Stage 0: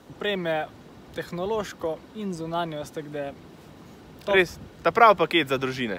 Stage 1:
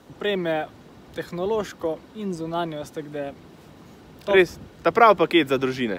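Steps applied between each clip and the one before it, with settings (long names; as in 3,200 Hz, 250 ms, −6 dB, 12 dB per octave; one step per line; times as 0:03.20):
dynamic equaliser 320 Hz, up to +6 dB, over −35 dBFS, Q 1.2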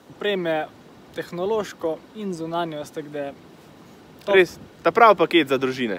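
high-pass filter 150 Hz 6 dB per octave
level +1.5 dB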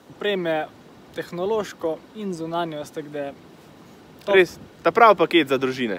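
no processing that can be heard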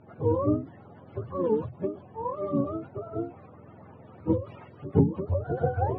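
frequency axis turned over on the octave scale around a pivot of 440 Hz
low-pass that shuts in the quiet parts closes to 2,300 Hz, open at −17 dBFS
every ending faded ahead of time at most 150 dB per second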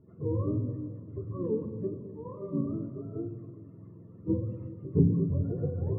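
moving average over 57 samples
on a send at −3 dB: convolution reverb RT60 2.1 s, pre-delay 3 ms
on the sum: level −2.5 dB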